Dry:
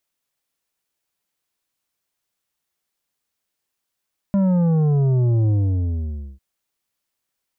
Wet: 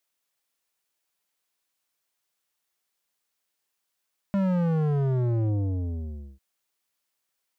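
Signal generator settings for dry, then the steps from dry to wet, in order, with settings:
sub drop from 200 Hz, over 2.05 s, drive 8.5 dB, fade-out 0.90 s, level -15.5 dB
bass shelf 270 Hz -9 dB; hard clipper -21 dBFS

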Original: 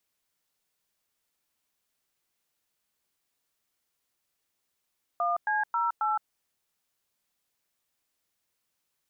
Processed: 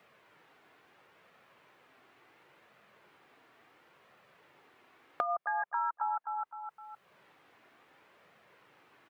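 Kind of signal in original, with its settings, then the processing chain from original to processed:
DTMF "1C08", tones 166 ms, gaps 104 ms, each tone -27 dBFS
flange 0.72 Hz, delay 1.5 ms, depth 1.4 ms, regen -41%; on a send: feedback delay 257 ms, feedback 19%, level -8.5 dB; on the sum: three bands compressed up and down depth 100%

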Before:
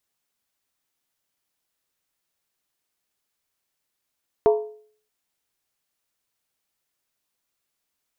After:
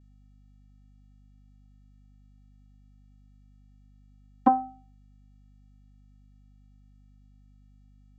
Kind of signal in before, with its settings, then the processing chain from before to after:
skin hit, lowest mode 427 Hz, decay 0.52 s, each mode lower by 7 dB, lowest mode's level -11 dB
vocoder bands 16, square 258 Hz; hum 50 Hz, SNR 19 dB; loudspeaker Doppler distortion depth 0.2 ms

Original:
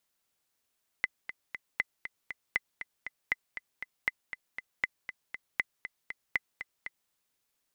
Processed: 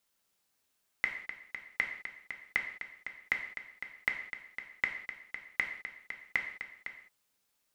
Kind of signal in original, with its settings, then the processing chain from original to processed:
metronome 237 bpm, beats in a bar 3, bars 8, 2.03 kHz, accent 11 dB -13.5 dBFS
gated-style reverb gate 230 ms falling, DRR 2.5 dB

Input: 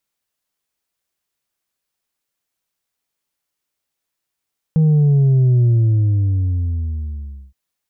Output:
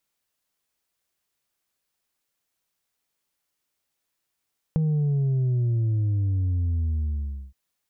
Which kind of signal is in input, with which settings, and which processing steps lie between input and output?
sub drop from 160 Hz, over 2.77 s, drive 3 dB, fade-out 1.90 s, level -10.5 dB
compression 6:1, threshold -23 dBFS

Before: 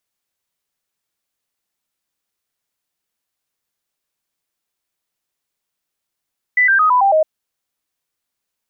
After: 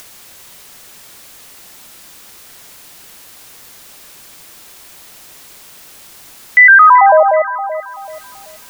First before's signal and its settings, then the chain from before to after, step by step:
stepped sine 1.99 kHz down, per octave 3, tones 6, 0.11 s, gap 0.00 s -9.5 dBFS
upward compressor, threshold -25 dBFS; echo whose repeats swap between lows and highs 191 ms, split 1.2 kHz, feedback 58%, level -8.5 dB; loudness maximiser +10 dB

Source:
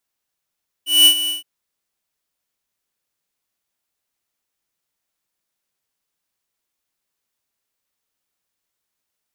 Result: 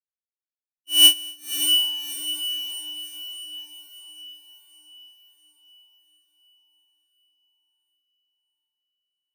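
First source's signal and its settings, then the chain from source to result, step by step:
ADSR square 2.96 kHz, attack 198 ms, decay 82 ms, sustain -13 dB, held 0.43 s, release 139 ms -8.5 dBFS
expander on every frequency bin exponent 2; on a send: echo that smears into a reverb 610 ms, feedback 49%, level -4.5 dB

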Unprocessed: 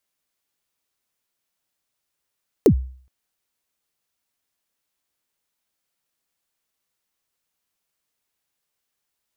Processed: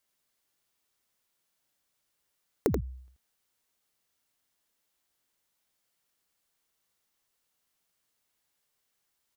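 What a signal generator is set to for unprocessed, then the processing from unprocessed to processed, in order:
kick drum length 0.42 s, from 500 Hz, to 64 Hz, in 83 ms, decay 0.49 s, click on, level -6.5 dB
band-stop 2.5 kHz, Q 28; compression 12:1, threshold -25 dBFS; delay 83 ms -5.5 dB

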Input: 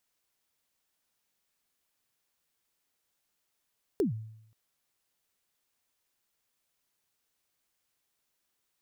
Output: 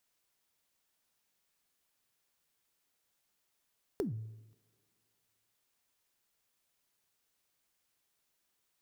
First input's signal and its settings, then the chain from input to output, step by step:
kick drum length 0.53 s, from 450 Hz, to 110 Hz, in 125 ms, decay 0.76 s, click on, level -21.5 dB
compression, threshold -34 dBFS; two-slope reverb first 0.3 s, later 2.1 s, from -18 dB, DRR 16.5 dB

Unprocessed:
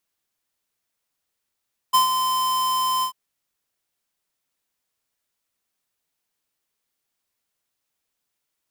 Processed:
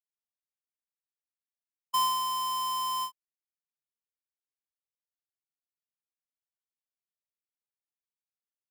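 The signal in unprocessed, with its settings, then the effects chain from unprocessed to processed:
ADSR square 1.03 kHz, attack 18 ms, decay 122 ms, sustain -7.5 dB, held 1.10 s, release 92 ms -14.5 dBFS
expander -18 dBFS; saturation -24.5 dBFS

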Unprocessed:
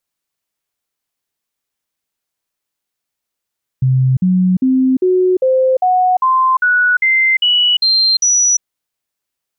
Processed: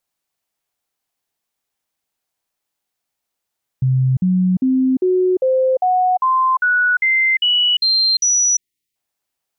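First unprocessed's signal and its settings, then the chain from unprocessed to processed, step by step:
stepped sine 130 Hz up, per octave 2, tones 12, 0.35 s, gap 0.05 s -9 dBFS
spectral selection erased 7.26–8.96 s, 450–1800 Hz; peaking EQ 760 Hz +5.5 dB 0.52 oct; peak limiter -12 dBFS

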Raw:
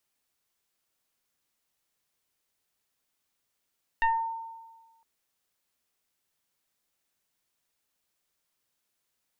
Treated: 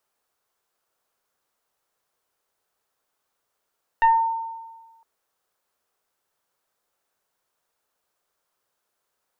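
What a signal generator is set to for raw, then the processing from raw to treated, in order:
FM tone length 1.01 s, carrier 908 Hz, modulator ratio 1.01, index 1.5, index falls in 0.38 s exponential, decay 1.35 s, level -19 dB
high-order bell 770 Hz +9 dB 2.3 oct

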